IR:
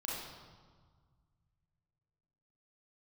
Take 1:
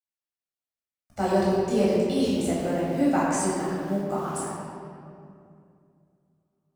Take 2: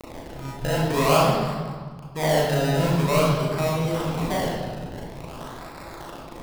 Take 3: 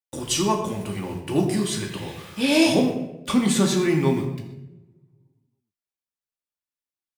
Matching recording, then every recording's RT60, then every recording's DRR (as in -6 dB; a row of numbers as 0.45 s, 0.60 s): 2; 2.5 s, 1.6 s, 0.95 s; -8.5 dB, -5.5 dB, 0.0 dB